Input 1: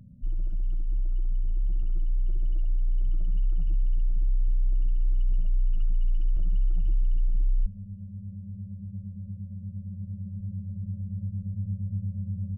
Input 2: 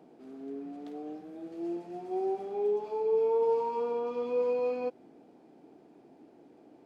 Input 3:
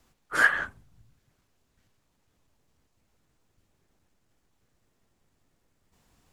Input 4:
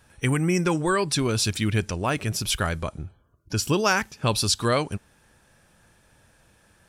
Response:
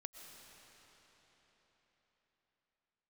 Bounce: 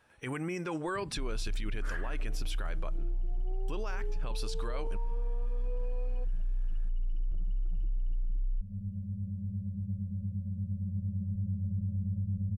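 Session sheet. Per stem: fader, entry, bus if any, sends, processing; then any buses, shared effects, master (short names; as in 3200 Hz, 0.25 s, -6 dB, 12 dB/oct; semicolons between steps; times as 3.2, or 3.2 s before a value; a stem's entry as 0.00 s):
+2.0 dB, 0.95 s, no send, compressor 6:1, threshold -28 dBFS, peak gain reduction 8.5 dB
-13.5 dB, 1.35 s, no send, dry
-15.0 dB, 1.50 s, no send, dry
-5.0 dB, 0.00 s, muted 3.13–3.68, no send, tone controls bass -10 dB, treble -10 dB; limiter -21.5 dBFS, peak gain reduction 11.5 dB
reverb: off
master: limiter -26 dBFS, peak gain reduction 8.5 dB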